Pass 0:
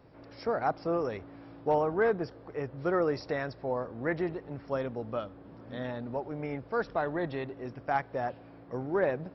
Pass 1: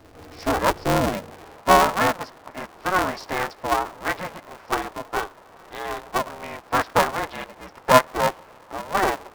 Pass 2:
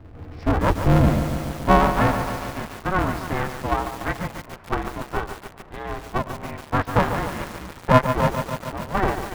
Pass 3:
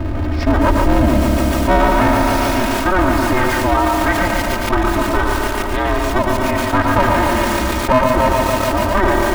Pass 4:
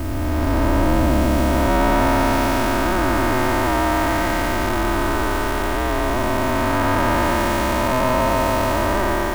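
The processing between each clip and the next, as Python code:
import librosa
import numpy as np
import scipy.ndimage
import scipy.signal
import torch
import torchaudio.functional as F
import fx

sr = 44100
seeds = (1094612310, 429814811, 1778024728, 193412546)

y1 = fx.dynamic_eq(x, sr, hz=1000.0, q=2.4, threshold_db=-44.0, ratio=4.0, max_db=5)
y1 = fx.filter_sweep_highpass(y1, sr, from_hz=67.0, to_hz=820.0, start_s=0.33, end_s=1.65, q=2.4)
y1 = y1 * np.sign(np.sin(2.0 * np.pi * 190.0 * np.arange(len(y1)) / sr))
y1 = F.gain(torch.from_numpy(y1), 6.5).numpy()
y2 = fx.bass_treble(y1, sr, bass_db=14, treble_db=-13)
y2 = fx.echo_crushed(y2, sr, ms=144, feedback_pct=80, bits=5, wet_db=-8)
y2 = F.gain(torch.from_numpy(y2), -2.5).numpy()
y3 = y2 + 0.82 * np.pad(y2, (int(3.2 * sr / 1000.0), 0))[:len(y2)]
y3 = fx.echo_feedback(y3, sr, ms=115, feedback_pct=36, wet_db=-7.5)
y3 = fx.env_flatten(y3, sr, amount_pct=70)
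y3 = F.gain(torch.from_numpy(y3), -2.5).numpy()
y4 = fx.spec_blur(y3, sr, span_ms=532.0)
y4 = fx.dmg_noise_colour(y4, sr, seeds[0], colour='white', level_db=-41.0)
y4 = F.gain(torch.from_numpy(y4), -1.5).numpy()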